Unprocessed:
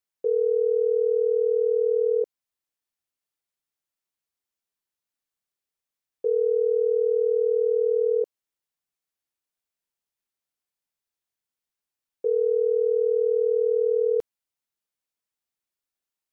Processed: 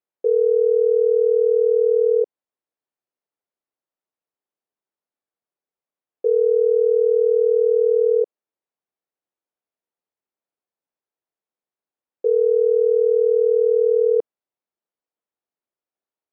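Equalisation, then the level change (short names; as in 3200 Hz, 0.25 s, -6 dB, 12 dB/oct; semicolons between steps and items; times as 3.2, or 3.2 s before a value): band-pass 490 Hz, Q 0.79; +5.5 dB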